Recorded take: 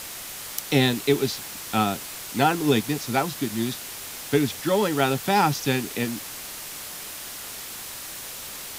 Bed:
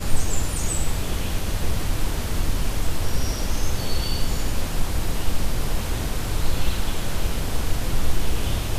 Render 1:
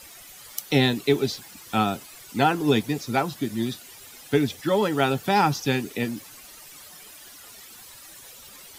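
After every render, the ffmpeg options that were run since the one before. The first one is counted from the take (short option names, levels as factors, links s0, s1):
-af "afftdn=nr=13:nf=-37"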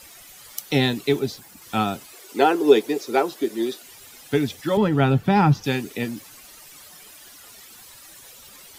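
-filter_complex "[0:a]asettb=1/sr,asplit=3[s0][s1][s2];[s0]atrim=end=1.194[s3];[s1]atrim=start=1.19:end=1.62,asetpts=PTS-STARTPTS,afade=t=in:d=0.004:c=qsin,afade=t=out:st=0.426:d=0.004:c=qsin,equalizer=f=3500:t=o:w=2.4:g=-5.5[s4];[s2]atrim=start=1.616[s5];[s3][s4]acrossfade=d=0.004:c1=hsin:c2=qsin[s6];[s6][s5]acrossfade=d=0.004:c1=qsin:c2=hsin,asettb=1/sr,asplit=3[s7][s8][s9];[s7]atrim=end=2.134[s10];[s8]atrim=start=2.13:end=3.82,asetpts=PTS-STARTPTS,afade=t=in:d=0.004:c=qsin,afade=t=out:st=1.686:d=0.004:c=qsin,highpass=f=390:t=q:w=3.3[s11];[s9]atrim=start=3.816[s12];[s10][s11]acrossfade=d=0.004:c1=hsin:c2=qsin[s13];[s13][s12]acrossfade=d=0.004:c1=qsin:c2=hsin,asettb=1/sr,asplit=3[s14][s15][s16];[s14]atrim=end=4.774[s17];[s15]atrim=start=4.77:end=5.64,asetpts=PTS-STARTPTS,afade=t=in:d=0.004:c=qsin,afade=t=out:st=0.866:d=0.004:c=qsin,bass=f=250:g=12,treble=f=4000:g=-11[s18];[s16]atrim=start=5.636[s19];[s17][s18]acrossfade=d=0.004:c1=hsin:c2=qsin[s20];[s20][s19]acrossfade=d=0.004:c1=qsin:c2=hsin"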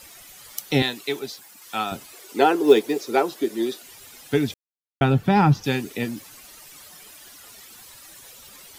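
-filter_complex "[0:a]asettb=1/sr,asplit=3[s0][s1][s2];[s0]atrim=end=0.824[s3];[s1]atrim=start=0.82:end=1.92,asetpts=PTS-STARTPTS,afade=t=in:d=0.004:c=qsin,afade=t=out:st=1.096:d=0.004:c=qsin,highpass=f=810:p=1[s4];[s2]atrim=start=1.916[s5];[s3][s4]acrossfade=d=0.004:c1=hsin:c2=qsin[s6];[s6][s5]acrossfade=d=0.004:c1=qsin:c2=hsin,asettb=1/sr,asplit=3[s7][s8][s9];[s7]atrim=end=2.644[s10];[s8]atrim=start=2.64:end=3.11,asetpts=PTS-STARTPTS,afade=t=in:d=0.004:c=qsin,afade=t=out:st=0.466:d=0.004:c=qsin,acrusher=bits=8:mode=log:mix=0:aa=0.000001[s11];[s9]atrim=start=3.106[s12];[s10][s11]acrossfade=d=0.004:c1=hsin:c2=qsin[s13];[s13][s12]acrossfade=d=0.004:c1=qsin:c2=hsin,asplit=3[s14][s15][s16];[s14]atrim=end=4.54,asetpts=PTS-STARTPTS,afade=t=out:st=4.536:d=0.004:c=hsin[s17];[s15]atrim=start=4.54:end=5.01,asetpts=PTS-STARTPTS,volume=0[s18];[s16]atrim=start=5.01,asetpts=PTS-STARTPTS,afade=t=in:d=0.004:c=hsin[s19];[s17][s18][s19]concat=n=3:v=0:a=1"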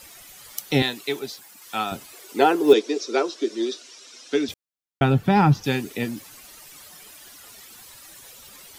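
-filter_complex "[0:a]asettb=1/sr,asplit=3[s0][s1][s2];[s0]atrim=end=2.734[s3];[s1]atrim=start=2.73:end=4.49,asetpts=PTS-STARTPTS,afade=t=in:d=0.004:c=qsin,afade=t=out:st=1.756:d=0.004:c=qsin,highpass=f=260:w=0.5412,highpass=f=260:w=1.3066,equalizer=f=820:t=q:w=4:g=-9,equalizer=f=1900:t=q:w=4:g=-4,equalizer=f=3900:t=q:w=4:g=3,equalizer=f=5600:t=q:w=4:g=8,lowpass=f=7500:w=0.5412,lowpass=f=7500:w=1.3066[s4];[s2]atrim=start=4.486[s5];[s3][s4]acrossfade=d=0.004:c1=hsin:c2=qsin[s6];[s6][s5]acrossfade=d=0.004:c1=qsin:c2=hsin"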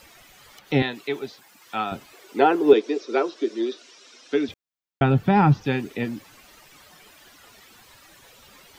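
-filter_complex "[0:a]acrossover=split=3300[s0][s1];[s1]acompressor=threshold=0.00398:ratio=4:attack=1:release=60[s2];[s0][s2]amix=inputs=2:normalize=0,equalizer=f=11000:w=0.92:g=-7.5"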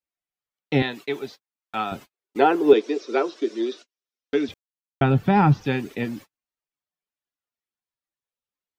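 -af "agate=range=0.00447:threshold=0.0112:ratio=16:detection=peak"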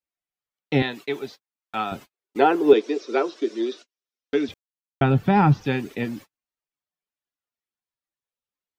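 -af anull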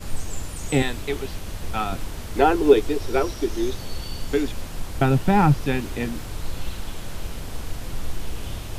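-filter_complex "[1:a]volume=0.422[s0];[0:a][s0]amix=inputs=2:normalize=0"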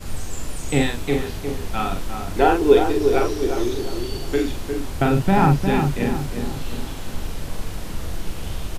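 -filter_complex "[0:a]asplit=2[s0][s1];[s1]adelay=42,volume=0.631[s2];[s0][s2]amix=inputs=2:normalize=0,asplit=2[s3][s4];[s4]adelay=355,lowpass=f=1400:p=1,volume=0.531,asplit=2[s5][s6];[s6]adelay=355,lowpass=f=1400:p=1,volume=0.47,asplit=2[s7][s8];[s8]adelay=355,lowpass=f=1400:p=1,volume=0.47,asplit=2[s9][s10];[s10]adelay=355,lowpass=f=1400:p=1,volume=0.47,asplit=2[s11][s12];[s12]adelay=355,lowpass=f=1400:p=1,volume=0.47,asplit=2[s13][s14];[s14]adelay=355,lowpass=f=1400:p=1,volume=0.47[s15];[s3][s5][s7][s9][s11][s13][s15]amix=inputs=7:normalize=0"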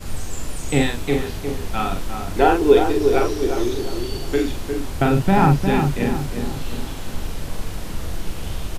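-af "volume=1.12,alimiter=limit=0.891:level=0:latency=1"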